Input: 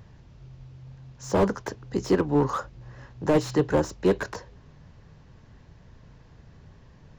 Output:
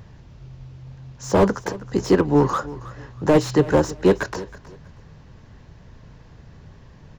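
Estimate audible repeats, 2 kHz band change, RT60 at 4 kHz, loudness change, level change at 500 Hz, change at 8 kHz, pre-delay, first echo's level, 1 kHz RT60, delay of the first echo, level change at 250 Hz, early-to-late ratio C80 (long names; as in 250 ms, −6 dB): 2, +5.5 dB, no reverb audible, +5.5 dB, +5.5 dB, +5.5 dB, no reverb audible, −18.0 dB, no reverb audible, 320 ms, +5.5 dB, no reverb audible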